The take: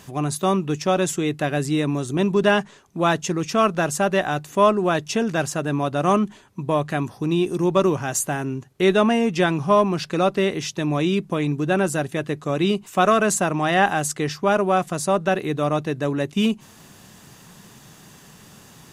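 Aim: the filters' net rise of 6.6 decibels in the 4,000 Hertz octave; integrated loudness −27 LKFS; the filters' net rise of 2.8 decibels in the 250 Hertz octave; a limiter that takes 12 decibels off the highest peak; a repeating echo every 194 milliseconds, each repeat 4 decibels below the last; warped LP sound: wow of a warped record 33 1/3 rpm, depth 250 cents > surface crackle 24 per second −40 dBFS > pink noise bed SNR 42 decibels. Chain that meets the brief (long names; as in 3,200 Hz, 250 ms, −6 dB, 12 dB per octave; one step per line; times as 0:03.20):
parametric band 250 Hz +4 dB
parametric band 4,000 Hz +8.5 dB
brickwall limiter −14.5 dBFS
repeating echo 194 ms, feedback 63%, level −4 dB
wow of a warped record 33 1/3 rpm, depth 250 cents
surface crackle 24 per second −40 dBFS
pink noise bed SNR 42 dB
level −4.5 dB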